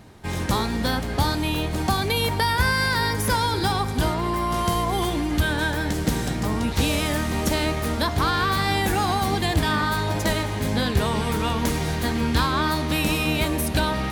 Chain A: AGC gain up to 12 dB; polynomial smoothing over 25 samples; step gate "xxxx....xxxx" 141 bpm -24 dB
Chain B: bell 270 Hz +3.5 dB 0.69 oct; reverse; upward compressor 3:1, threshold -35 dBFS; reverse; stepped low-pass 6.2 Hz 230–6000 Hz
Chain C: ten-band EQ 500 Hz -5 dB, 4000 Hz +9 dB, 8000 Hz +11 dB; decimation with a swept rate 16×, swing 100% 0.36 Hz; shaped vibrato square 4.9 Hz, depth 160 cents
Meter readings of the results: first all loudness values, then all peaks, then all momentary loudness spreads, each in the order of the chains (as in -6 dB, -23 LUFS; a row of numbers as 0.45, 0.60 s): -17.5, -19.5, -21.0 LUFS; -1.5, -4.5, -4.0 dBFS; 12, 4, 6 LU